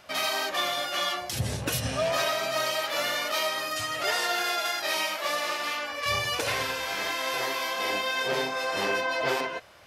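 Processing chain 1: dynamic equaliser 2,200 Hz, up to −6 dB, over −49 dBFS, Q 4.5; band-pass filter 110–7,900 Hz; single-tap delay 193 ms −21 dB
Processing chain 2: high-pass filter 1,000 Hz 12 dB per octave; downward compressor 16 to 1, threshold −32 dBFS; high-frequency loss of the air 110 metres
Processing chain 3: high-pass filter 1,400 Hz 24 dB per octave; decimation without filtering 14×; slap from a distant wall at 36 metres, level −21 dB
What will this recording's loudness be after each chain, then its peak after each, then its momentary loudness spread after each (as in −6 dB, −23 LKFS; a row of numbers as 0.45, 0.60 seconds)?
−28.5, −36.5, −31.5 LKFS; −13.5, −22.5, −17.0 dBFS; 4, 2, 4 LU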